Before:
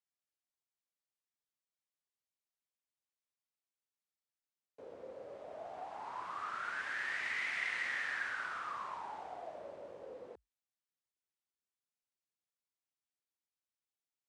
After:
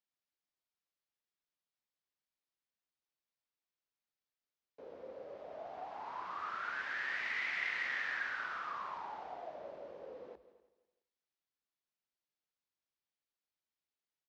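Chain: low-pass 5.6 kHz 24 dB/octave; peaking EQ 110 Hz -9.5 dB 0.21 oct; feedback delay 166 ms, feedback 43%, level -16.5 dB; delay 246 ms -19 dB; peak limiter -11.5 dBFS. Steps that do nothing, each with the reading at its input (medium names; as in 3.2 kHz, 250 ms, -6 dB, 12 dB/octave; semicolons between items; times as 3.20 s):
peak limiter -11.5 dBFS: peak at its input -24.5 dBFS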